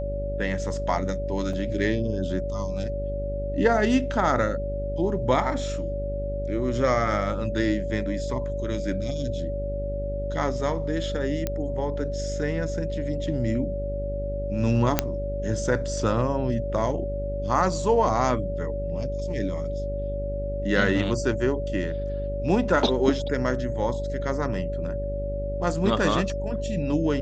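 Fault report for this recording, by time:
buzz 50 Hz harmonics 13 -31 dBFS
whine 570 Hz -30 dBFS
1.53 s: dropout 3.4 ms
11.47 s: pop -12 dBFS
14.99 s: pop -3 dBFS

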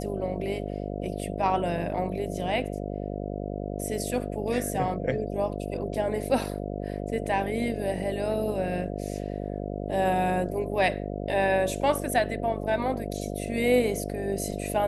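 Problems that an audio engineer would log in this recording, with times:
buzz 50 Hz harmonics 14 -33 dBFS

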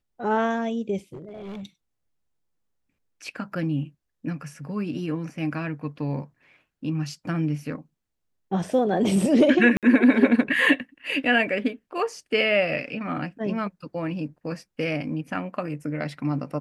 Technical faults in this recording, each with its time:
1.13–1.63 s: clipped -33.5 dBFS
9.77–9.83 s: dropout 57 ms

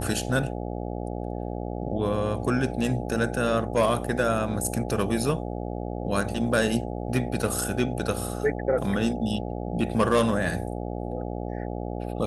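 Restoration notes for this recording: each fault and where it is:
buzz 60 Hz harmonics 14 -32 dBFS

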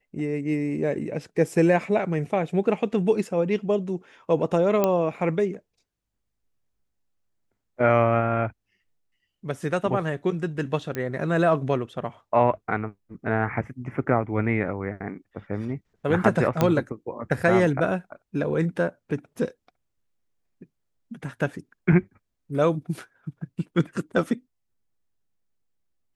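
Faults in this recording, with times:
4.84 s: pop -8 dBFS
10.95 s: pop -16 dBFS
16.61 s: pop -8 dBFS

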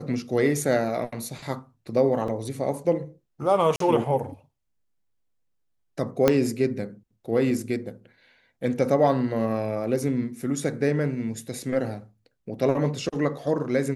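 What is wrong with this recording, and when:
2.28 s: dropout 2.9 ms
3.76–3.80 s: dropout 43 ms
6.28 s: pop -5 dBFS

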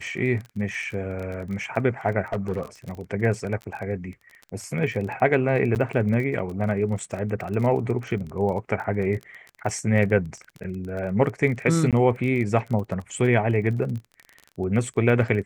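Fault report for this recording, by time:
crackle 23 per s -31 dBFS
2.32–2.61 s: clipped -19.5 dBFS
5.75–5.76 s: dropout 9.4 ms
11.91–11.93 s: dropout 17 ms

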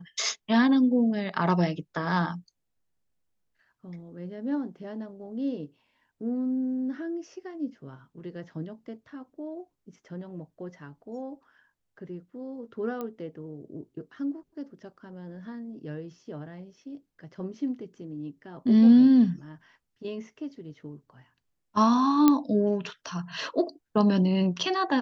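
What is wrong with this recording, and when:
13.01 s: pop -22 dBFS
22.28 s: pop -7 dBFS

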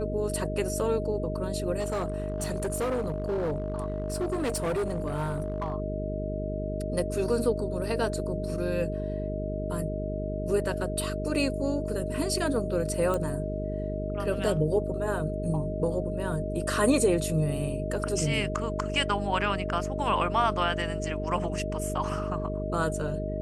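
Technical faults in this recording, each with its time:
buzz 50 Hz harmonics 9 -33 dBFS
whine 620 Hz -34 dBFS
1.79–5.74 s: clipped -25 dBFS
13.14 s: pop -18 dBFS

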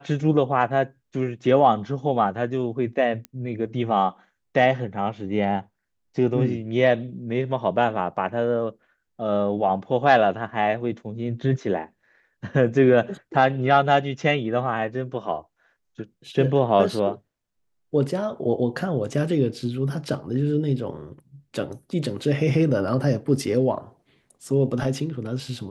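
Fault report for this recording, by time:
3.25 s: pop -19 dBFS

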